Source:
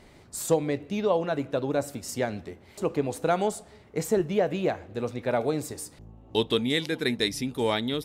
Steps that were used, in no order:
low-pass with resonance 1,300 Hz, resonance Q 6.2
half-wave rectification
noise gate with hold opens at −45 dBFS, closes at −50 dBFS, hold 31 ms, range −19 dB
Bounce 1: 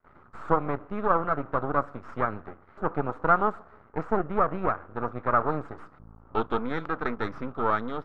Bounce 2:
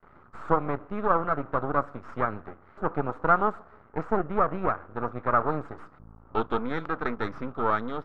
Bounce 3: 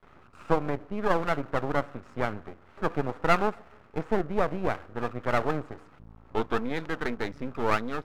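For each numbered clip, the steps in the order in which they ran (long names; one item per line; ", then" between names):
half-wave rectification, then noise gate with hold, then low-pass with resonance
noise gate with hold, then half-wave rectification, then low-pass with resonance
noise gate with hold, then low-pass with resonance, then half-wave rectification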